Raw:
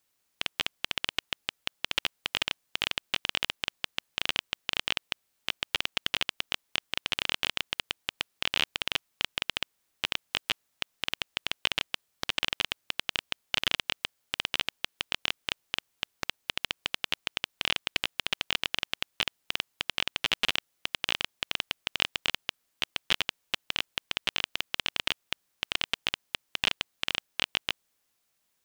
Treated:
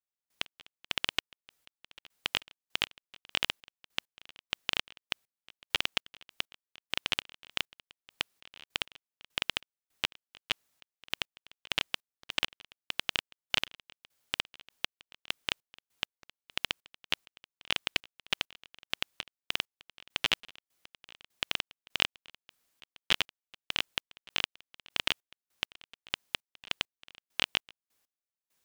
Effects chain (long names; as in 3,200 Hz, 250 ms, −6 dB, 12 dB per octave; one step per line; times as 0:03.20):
gate pattern "..x...xx" 100 BPM −24 dB